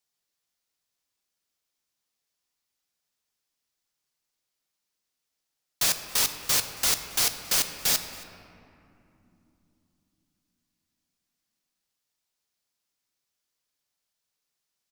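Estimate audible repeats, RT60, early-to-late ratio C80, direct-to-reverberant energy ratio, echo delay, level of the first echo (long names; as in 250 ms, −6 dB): 1, 2.9 s, 9.5 dB, 7.5 dB, 274 ms, −22.0 dB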